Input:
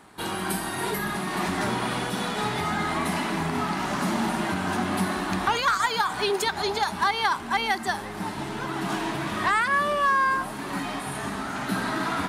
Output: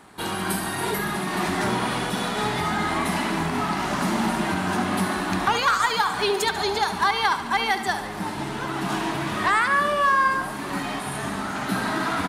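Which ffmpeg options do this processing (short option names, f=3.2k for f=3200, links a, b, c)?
-af "aecho=1:1:71|142|213|284|355|426|497:0.266|0.157|0.0926|0.0546|0.0322|0.019|0.0112,volume=2dB"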